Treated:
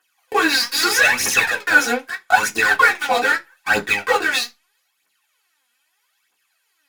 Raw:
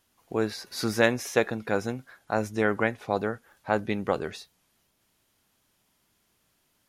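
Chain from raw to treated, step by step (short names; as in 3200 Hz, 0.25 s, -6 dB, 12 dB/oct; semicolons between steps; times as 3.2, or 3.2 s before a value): HPF 1200 Hz 12 dB/oct; in parallel at -9.5 dB: fuzz box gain 49 dB, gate -49 dBFS; on the sum: phaser 0.79 Hz, delay 4.3 ms, feedback 80%; reverb RT60 0.20 s, pre-delay 3 ms, DRR -2.5 dB; gain -3 dB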